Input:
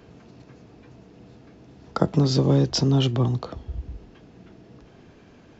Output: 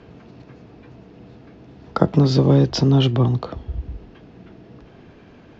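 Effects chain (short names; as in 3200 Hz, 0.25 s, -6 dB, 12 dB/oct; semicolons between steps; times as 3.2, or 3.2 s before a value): LPF 4200 Hz 12 dB/oct; gain +4.5 dB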